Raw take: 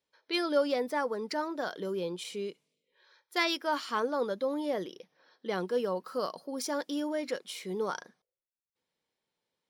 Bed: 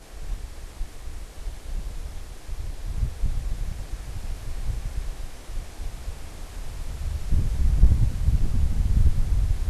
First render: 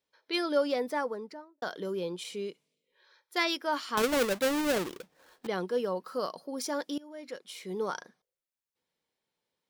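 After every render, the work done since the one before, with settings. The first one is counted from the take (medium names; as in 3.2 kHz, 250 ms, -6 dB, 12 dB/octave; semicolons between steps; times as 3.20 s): 0.92–1.62 s: studio fade out; 3.97–5.47 s: square wave that keeps the level; 6.98–7.82 s: fade in, from -22.5 dB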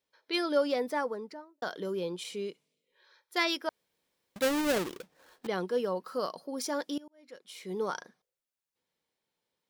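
3.69–4.36 s: room tone; 7.08–7.72 s: fade in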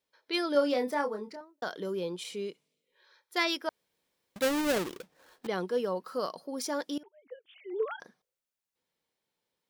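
0.52–1.41 s: doubling 28 ms -6 dB; 7.03–8.00 s: formants replaced by sine waves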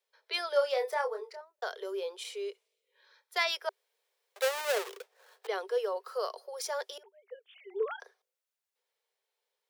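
Chebyshev high-pass 390 Hz, order 8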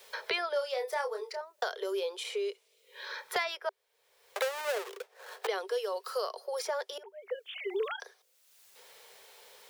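three bands compressed up and down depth 100%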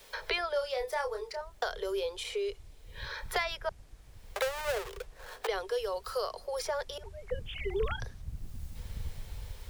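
add bed -19.5 dB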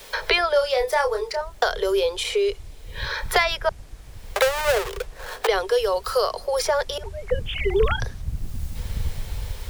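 trim +12 dB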